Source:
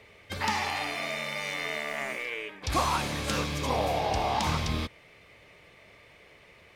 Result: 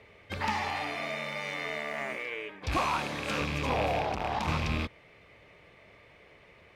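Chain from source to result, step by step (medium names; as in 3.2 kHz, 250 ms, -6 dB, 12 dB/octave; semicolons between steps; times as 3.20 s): rattle on loud lows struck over -33 dBFS, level -18 dBFS; 2.77–3.41 s: high-pass 250 Hz 6 dB/octave; one-sided clip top -24.5 dBFS; treble shelf 4.3 kHz -11.5 dB; 4.02–4.48 s: transformer saturation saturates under 710 Hz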